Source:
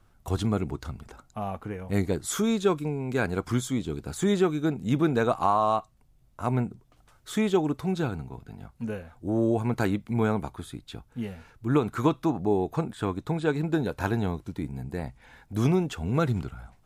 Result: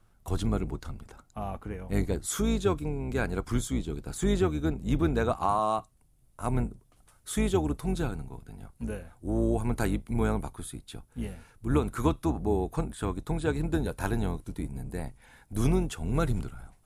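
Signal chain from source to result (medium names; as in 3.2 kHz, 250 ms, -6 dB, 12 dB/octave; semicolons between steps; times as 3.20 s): octave divider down 2 oct, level -1 dB; peaking EQ 10 kHz +5 dB 0.67 oct, from 5.49 s +14 dB; trim -3.5 dB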